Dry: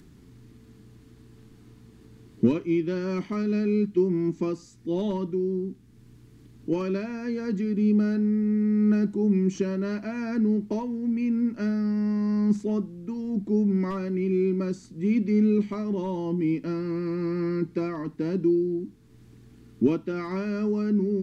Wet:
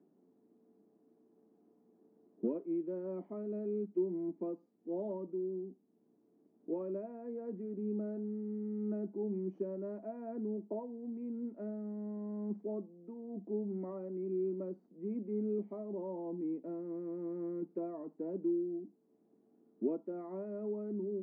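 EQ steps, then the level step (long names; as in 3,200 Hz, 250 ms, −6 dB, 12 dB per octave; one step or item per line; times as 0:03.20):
Chebyshev band-pass filter 180–690 Hz, order 3
first difference
spectral tilt +1.5 dB per octave
+17.5 dB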